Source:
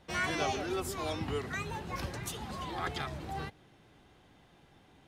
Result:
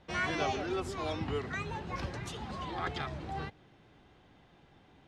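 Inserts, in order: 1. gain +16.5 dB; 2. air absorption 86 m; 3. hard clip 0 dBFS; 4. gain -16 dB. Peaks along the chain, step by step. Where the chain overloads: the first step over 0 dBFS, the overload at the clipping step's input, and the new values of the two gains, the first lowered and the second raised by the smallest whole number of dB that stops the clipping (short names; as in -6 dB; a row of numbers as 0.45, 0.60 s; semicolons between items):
-4.0, -5.0, -5.0, -21.0 dBFS; no overload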